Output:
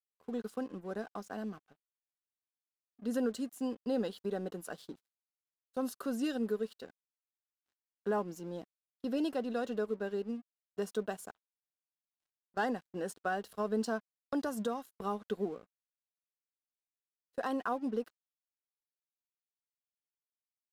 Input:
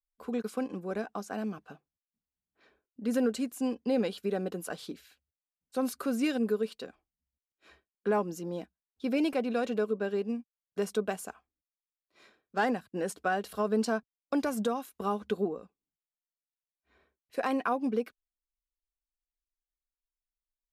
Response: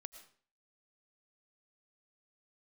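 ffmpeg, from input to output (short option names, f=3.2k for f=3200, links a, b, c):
-af "asuperstop=centerf=2300:order=4:qfactor=3.5,aeval=exprs='sgn(val(0))*max(abs(val(0))-0.00211,0)':c=same,agate=range=-11dB:threshold=-46dB:ratio=16:detection=peak,volume=-4.5dB"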